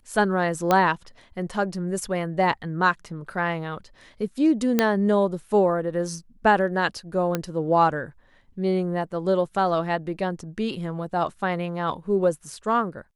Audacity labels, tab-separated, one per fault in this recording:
0.710000	0.710000	pop -7 dBFS
4.790000	4.790000	pop -5 dBFS
7.350000	7.350000	pop -10 dBFS

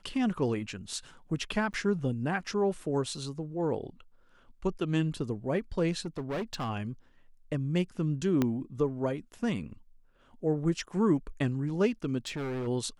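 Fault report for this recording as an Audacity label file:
1.730000	1.740000	dropout 8.7 ms
6.050000	6.700000	clipped -30 dBFS
8.420000	8.420000	pop -14 dBFS
12.270000	12.680000	clipped -31.5 dBFS

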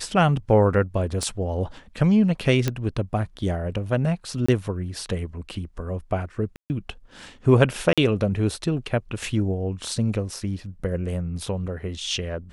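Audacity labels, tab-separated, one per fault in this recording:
1.230000	1.230000	pop -17 dBFS
2.680000	2.680000	pop -9 dBFS
4.460000	4.490000	dropout 25 ms
6.560000	6.700000	dropout 139 ms
7.930000	7.980000	dropout 46 ms

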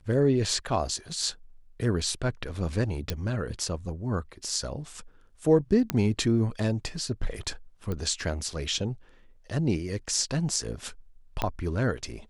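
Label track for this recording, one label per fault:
3.100000	3.100000	pop -14 dBFS
5.900000	5.900000	pop -10 dBFS
7.920000	7.920000	pop -20 dBFS
11.420000	11.420000	pop -12 dBFS

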